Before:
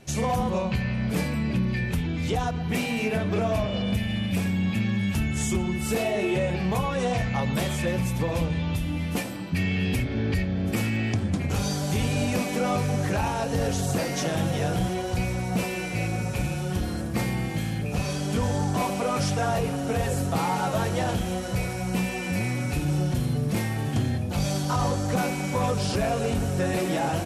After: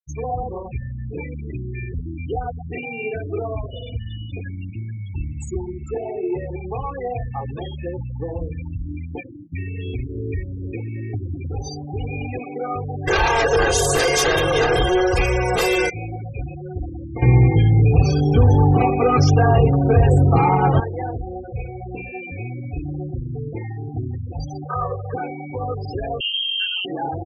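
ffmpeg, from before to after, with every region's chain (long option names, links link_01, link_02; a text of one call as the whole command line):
ffmpeg -i in.wav -filter_complex "[0:a]asettb=1/sr,asplit=3[link_01][link_02][link_03];[link_01]atrim=end=13.074[link_04];[link_02]atrim=start=13.07:end=15.9,asetpts=PTS-STARTPTS,afade=type=in:duration=0.004:curve=qsin,afade=type=out:start_time=2.826:duration=0.004:curve=qsin,equalizer=frequency=94:width_type=o:width=1.2:gain=-15,aecho=1:1:1.9:0.98,atrim=end_sample=124803,aeval=exprs='0.211*sin(PI/2*3.16*val(0)/0.211)':channel_layout=same[link_05];[link_03]atrim=start=15.896[link_06];[link_04][link_05]acrossfade=duration=0.004:curve1=hsin:curve2=qsin[link_07];[link_07][link_06]acrossfade=duration=0.004:curve1=qsin:curve2=hsin,asettb=1/sr,asplit=3[link_08][link_09][link_10];[link_08]atrim=end=17.224[link_11];[link_09]atrim=start=17.22:end=20.8,asetpts=PTS-STARTPTS,afade=type=in:duration=0.004:curve=qsin,afade=type=out:start_time=3.576:duration=0.004:curve=qsin,equalizer=frequency=130:width=0.6:gain=12,acontrast=86,asplit=2[link_12][link_13];[link_13]adelay=16,volume=-11dB[link_14];[link_12][link_14]amix=inputs=2:normalize=0,atrim=end_sample=157878[link_15];[link_10]atrim=start=20.796[link_16];[link_11][link_15]acrossfade=duration=0.004:curve1=hsin:curve2=qsin[link_17];[link_17][link_16]acrossfade=duration=0.004:curve1=qsin:curve2=hsin,asettb=1/sr,asplit=3[link_18][link_19][link_20];[link_18]atrim=end=24.644[link_21];[link_19]atrim=start=24.64:end=25.14,asetpts=PTS-STARTPTS,afade=type=in:duration=0.004:curve=qsin,afade=type=out:start_time=0.496:duration=0.004:curve=qsin,highpass=frequency=140:poles=1,highshelf=frequency=2700:width_type=q:width=1.5:gain=-11,aecho=1:1:1.8:0.83,atrim=end_sample=22050[link_22];[link_20]atrim=start=25.136[link_23];[link_21][link_22]acrossfade=duration=0.004:curve1=hsin:curve2=qsin[link_24];[link_24][link_23]acrossfade=duration=0.004:curve1=qsin:curve2=hsin,asettb=1/sr,asplit=3[link_25][link_26][link_27];[link_25]atrim=end=26.204[link_28];[link_26]atrim=start=26.2:end=26.85,asetpts=PTS-STARTPTS,afade=type=in:duration=0.004:curve=qsin,afade=type=out:start_time=0.646:duration=0.004:curve=qsin,lowpass=frequency=2800:width_type=q:width=0.5098,lowpass=frequency=2800:width_type=q:width=0.6013,lowpass=frequency=2800:width_type=q:width=0.9,lowpass=frequency=2800:width_type=q:width=2.563,afreqshift=-3300,asubboost=boost=11.5:cutoff=110[link_29];[link_27]atrim=start=26.846[link_30];[link_28][link_29]acrossfade=duration=0.004:curve1=hsin:curve2=qsin[link_31];[link_31][link_30]acrossfade=duration=0.004:curve1=qsin:curve2=hsin,afftfilt=real='re*gte(hypot(re,im),0.0794)':imag='im*gte(hypot(re,im),0.0794)':win_size=1024:overlap=0.75,aecho=1:1:2.5:0.97,volume=-2.5dB" out.wav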